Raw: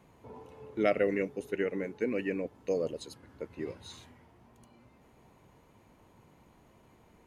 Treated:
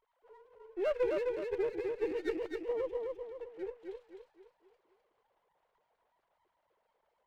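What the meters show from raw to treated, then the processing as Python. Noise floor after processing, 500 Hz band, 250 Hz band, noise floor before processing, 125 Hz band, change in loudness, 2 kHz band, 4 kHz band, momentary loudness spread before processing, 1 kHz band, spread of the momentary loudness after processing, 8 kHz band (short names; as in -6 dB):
-80 dBFS, -1.5 dB, -7.5 dB, -62 dBFS, under -15 dB, -3.0 dB, -8.0 dB, -6.5 dB, 20 LU, -5.5 dB, 16 LU, under -10 dB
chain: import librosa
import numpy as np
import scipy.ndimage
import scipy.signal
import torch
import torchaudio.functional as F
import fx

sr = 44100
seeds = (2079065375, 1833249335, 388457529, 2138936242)

y = fx.sine_speech(x, sr)
y = fx.echo_feedback(y, sr, ms=258, feedback_pct=42, wet_db=-3.5)
y = fx.running_max(y, sr, window=9)
y = y * 10.0 ** (-4.5 / 20.0)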